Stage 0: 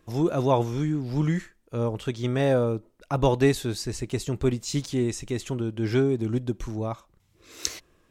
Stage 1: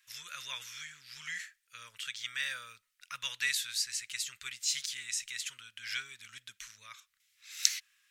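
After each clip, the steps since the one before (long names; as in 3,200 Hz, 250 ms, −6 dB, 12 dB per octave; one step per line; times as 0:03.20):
inverse Chebyshev high-pass filter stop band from 840 Hz, stop band 40 dB
level +2.5 dB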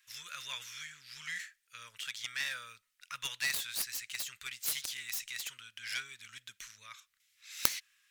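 phase distortion by the signal itself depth 0.69 ms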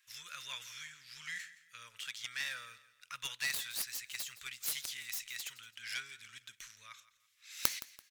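repeating echo 168 ms, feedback 34%, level −17 dB
level −2.5 dB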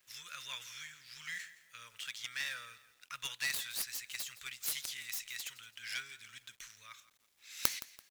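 log-companded quantiser 6 bits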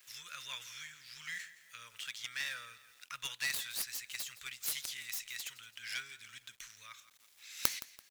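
one half of a high-frequency compander encoder only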